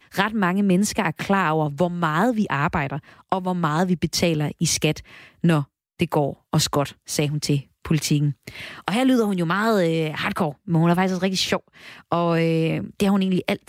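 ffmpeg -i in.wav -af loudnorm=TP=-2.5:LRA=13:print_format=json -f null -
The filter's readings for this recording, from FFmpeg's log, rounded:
"input_i" : "-22.0",
"input_tp" : "-5.1",
"input_lra" : "1.9",
"input_thresh" : "-32.3",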